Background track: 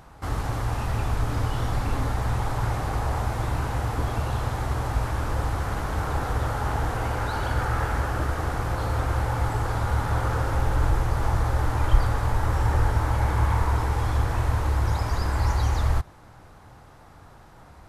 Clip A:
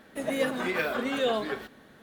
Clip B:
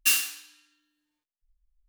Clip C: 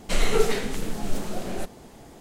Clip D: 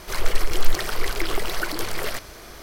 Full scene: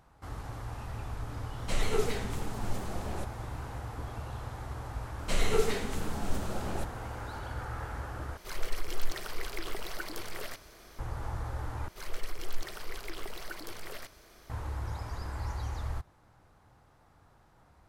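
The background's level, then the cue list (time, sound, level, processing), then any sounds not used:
background track −13 dB
0:01.59: mix in C −8.5 dB + pitch modulation by a square or saw wave saw down 4.2 Hz, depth 100 cents
0:05.19: mix in C −6 dB
0:08.37: overwrite with D −12 dB
0:11.88: overwrite with D −15 dB
not used: A, B

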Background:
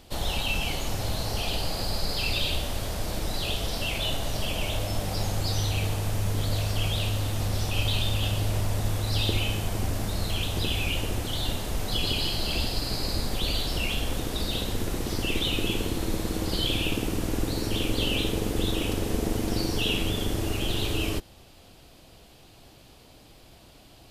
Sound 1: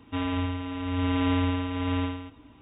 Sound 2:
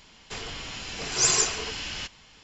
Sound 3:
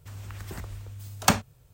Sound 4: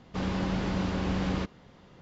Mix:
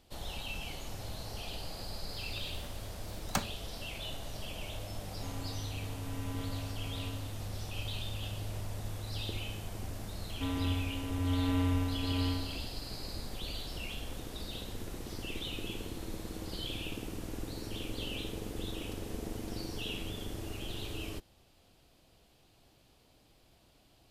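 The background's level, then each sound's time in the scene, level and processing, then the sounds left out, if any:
background −12.5 dB
0:02.07: mix in 3 −12.5 dB
0:05.09: mix in 1 −18 dB
0:10.28: mix in 1 −10 dB + low-shelf EQ 230 Hz +8.5 dB
not used: 2, 4

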